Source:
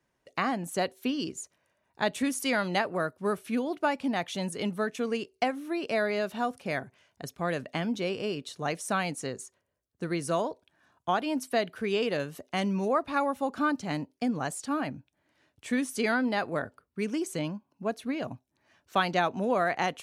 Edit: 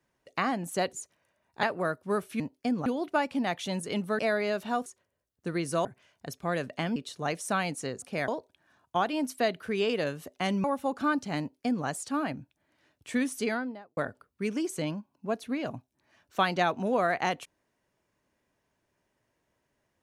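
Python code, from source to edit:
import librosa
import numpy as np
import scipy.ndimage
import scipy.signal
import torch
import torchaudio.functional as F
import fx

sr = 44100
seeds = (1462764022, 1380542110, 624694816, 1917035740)

y = fx.studio_fade_out(x, sr, start_s=15.87, length_s=0.67)
y = fx.edit(y, sr, fx.cut(start_s=0.93, length_s=0.41),
    fx.cut(start_s=2.04, length_s=0.74),
    fx.cut(start_s=4.88, length_s=1.0),
    fx.swap(start_s=6.55, length_s=0.26, other_s=9.42, other_length_s=0.99),
    fx.cut(start_s=7.92, length_s=0.44),
    fx.cut(start_s=12.77, length_s=0.44),
    fx.duplicate(start_s=13.97, length_s=0.46, to_s=3.55), tone=tone)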